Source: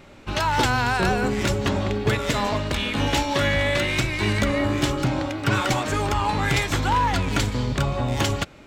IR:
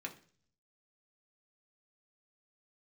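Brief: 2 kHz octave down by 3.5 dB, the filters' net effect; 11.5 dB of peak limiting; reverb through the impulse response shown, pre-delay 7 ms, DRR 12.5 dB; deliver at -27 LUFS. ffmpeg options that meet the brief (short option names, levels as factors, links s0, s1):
-filter_complex "[0:a]equalizer=f=2000:t=o:g=-4.5,alimiter=limit=0.106:level=0:latency=1,asplit=2[s0][s1];[1:a]atrim=start_sample=2205,adelay=7[s2];[s1][s2]afir=irnorm=-1:irlink=0,volume=0.251[s3];[s0][s3]amix=inputs=2:normalize=0,volume=1.19"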